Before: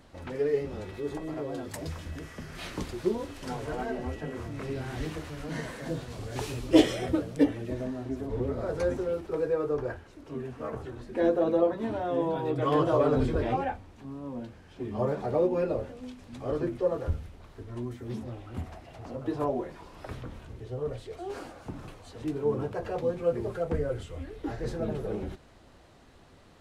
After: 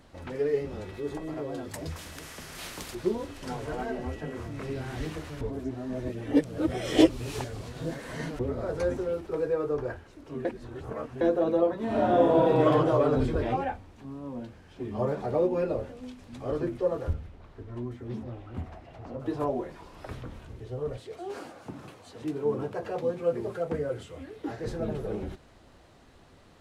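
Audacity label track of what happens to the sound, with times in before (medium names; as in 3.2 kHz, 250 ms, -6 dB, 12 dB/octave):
1.960000	2.950000	spectrum-flattening compressor 2:1
5.410000	8.390000	reverse
10.450000	11.210000	reverse
11.840000	12.650000	reverb throw, RT60 1.2 s, DRR -6.5 dB
17.130000	19.200000	low-pass 2.7 kHz 6 dB/octave
20.970000	24.670000	high-pass 130 Hz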